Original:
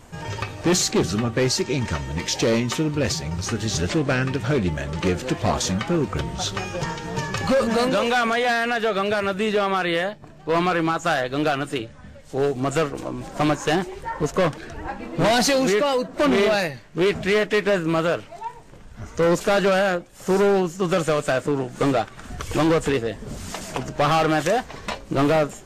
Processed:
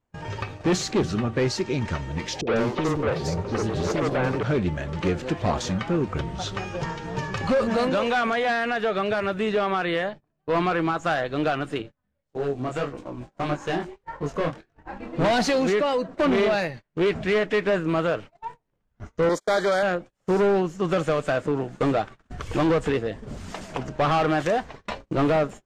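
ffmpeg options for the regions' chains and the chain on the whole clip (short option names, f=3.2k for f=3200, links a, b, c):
-filter_complex "[0:a]asettb=1/sr,asplit=3[a][b][c];[a]atrim=end=2.414[d];[b]atrim=start=2.41:end=4.43,asetpts=PTS-STARTPTS,afade=t=in:d=0.004:c=qsin,afade=t=out:st=2.016:d=0.004:c=qsin,equalizer=f=460:t=o:w=1.5:g=14.5,asoftclip=type=hard:threshold=-17.5dB,acrossover=split=360|3900[e][f][g];[f]adelay=60[h];[g]adelay=150[i];[e][h][i]amix=inputs=3:normalize=0,atrim=end_sample=89082[j];[c]atrim=start=4.426[k];[d][j]acrossfade=d=0.004:c1=hsin:c2=qsin[l];[l][k]acrossfade=d=0.004:c1=qsin:c2=hsin,asettb=1/sr,asplit=3[m][n][o];[m]atrim=end=11.824[p];[n]atrim=start=11.82:end=14.93,asetpts=PTS-STARTPTS,afade=t=in:d=0.004:c=qsin,afade=t=out:st=3.106:d=0.004:c=qsin,flanger=delay=20:depth=4.6:speed=1.7,aeval=exprs='sgn(val(0))*max(abs(val(0))-0.00106,0)':c=same[q];[o]atrim=start=14.926[r];[p][q]acrossfade=d=0.004:c1=hsin:c2=qsin[s];[s][r]acrossfade=d=0.004:c1=qsin:c2=hsin,asettb=1/sr,asplit=3[t][u][v];[t]atrim=end=19.294[w];[u]atrim=start=19.29:end=19.83,asetpts=PTS-STARTPTS,afade=t=in:d=0.004:c=qsin,afade=t=out:st=0.536:d=0.004:c=qsin,agate=range=-37dB:threshold=-26dB:ratio=16:release=100:detection=peak,asuperstop=centerf=2700:order=12:qfactor=4.1,bass=f=250:g=-11,treble=f=4k:g=8[x];[v]atrim=start=19.826[y];[w][x]acrossfade=d=0.004:c1=hsin:c2=qsin[z];[z][y]acrossfade=d=0.004:c1=qsin:c2=hsin,agate=range=-29dB:threshold=-34dB:ratio=16:detection=peak,aemphasis=mode=reproduction:type=50fm,volume=-2.5dB"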